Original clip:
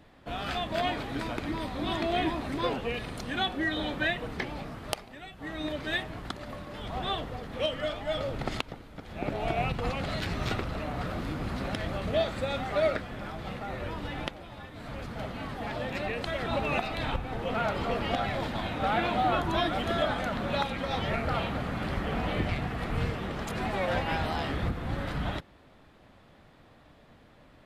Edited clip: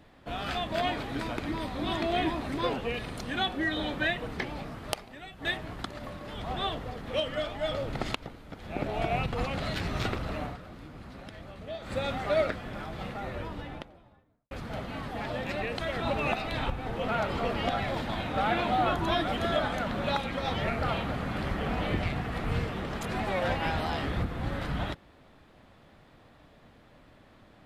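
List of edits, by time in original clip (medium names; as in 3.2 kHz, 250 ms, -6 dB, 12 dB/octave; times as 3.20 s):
5.45–5.91 s: delete
10.90–12.40 s: dip -12 dB, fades 0.13 s
13.60–14.97 s: studio fade out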